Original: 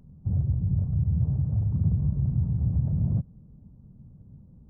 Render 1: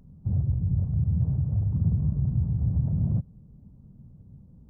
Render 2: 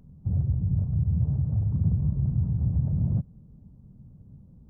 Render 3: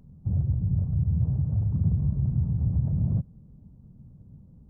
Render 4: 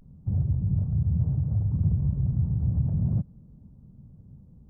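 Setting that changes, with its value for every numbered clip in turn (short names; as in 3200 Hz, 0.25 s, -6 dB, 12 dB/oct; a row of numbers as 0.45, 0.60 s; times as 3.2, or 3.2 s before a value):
vibrato, rate: 1.1, 5.4, 8.1, 0.37 Hz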